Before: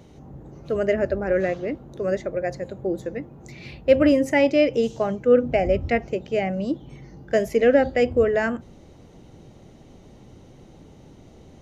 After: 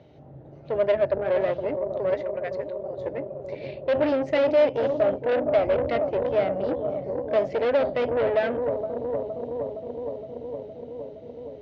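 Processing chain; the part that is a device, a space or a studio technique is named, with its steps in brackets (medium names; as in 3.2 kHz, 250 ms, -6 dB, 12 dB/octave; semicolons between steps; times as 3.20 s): 2.14–2.97 s: high-pass 930 Hz 12 dB/octave; analogue delay pedal into a guitar amplifier (bucket-brigade echo 465 ms, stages 2048, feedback 80%, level -9 dB; valve stage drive 22 dB, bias 0.7; cabinet simulation 90–4200 Hz, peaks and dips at 130 Hz +4 dB, 200 Hz -9 dB, 620 Hz +10 dB, 1.1 kHz -5 dB)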